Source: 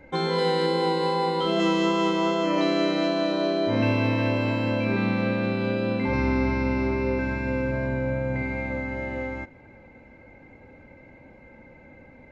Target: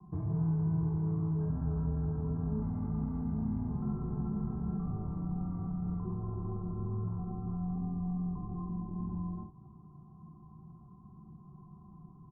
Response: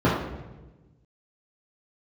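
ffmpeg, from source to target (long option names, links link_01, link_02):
-filter_complex "[0:a]acrossover=split=280[link_01][link_02];[link_02]asoftclip=type=hard:threshold=-25dB[link_03];[link_01][link_03]amix=inputs=2:normalize=0,highpass=frequency=300:width_type=q:width=0.5412,highpass=frequency=300:width_type=q:width=1.307,lowpass=frequency=2200:width_type=q:width=0.5176,lowpass=frequency=2200:width_type=q:width=0.7071,lowpass=frequency=2200:width_type=q:width=1.932,afreqshift=-200,equalizer=frequency=250:width_type=o:width=0.95:gain=13.5,acrossover=split=170|500|1400[link_04][link_05][link_06][link_07];[link_04]acompressor=threshold=-35dB:ratio=4[link_08];[link_05]acompressor=threshold=-29dB:ratio=4[link_09];[link_06]acompressor=threshold=-34dB:ratio=4[link_10];[link_07]acompressor=threshold=-49dB:ratio=4[link_11];[link_08][link_09][link_10][link_11]amix=inputs=4:normalize=0,asetrate=24046,aresample=44100,atempo=1.83401,equalizer=frequency=540:width_type=o:width=0.5:gain=-15,aecho=1:1:14|56:0.447|0.398,volume=-6.5dB"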